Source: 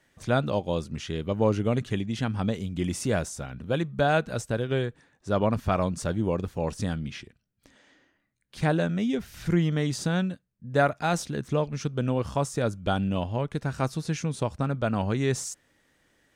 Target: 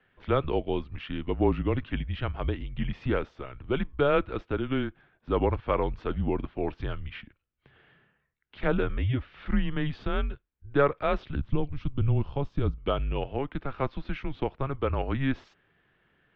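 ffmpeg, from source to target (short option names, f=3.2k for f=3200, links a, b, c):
-filter_complex "[0:a]asettb=1/sr,asplit=3[a][b][c];[a]atrim=end=11.354[d];[b]atrim=start=11.35:end=12.78,asetpts=PTS-STARTPTS,afade=t=in:d=0.004:c=qsin,afade=t=out:st=1.426:d=0.004:c=qsin,equalizer=f=125:t=o:w=1:g=8,equalizer=f=250:t=o:w=1:g=6,equalizer=f=500:t=o:w=1:g=-5,equalizer=f=1k:t=o:w=1:g=-4,equalizer=f=2k:t=o:w=1:g=-9[e];[c]atrim=start=12.776[f];[d][e]acrossfade=d=0.004:c1=hsin:c2=qsin[g];[g][f]acrossfade=d=0.004:c1=qsin:c2=hsin,highpass=f=160:t=q:w=0.5412,highpass=f=160:t=q:w=1.307,lowpass=f=3.4k:t=q:w=0.5176,lowpass=f=3.4k:t=q:w=0.7071,lowpass=f=3.4k:t=q:w=1.932,afreqshift=-140"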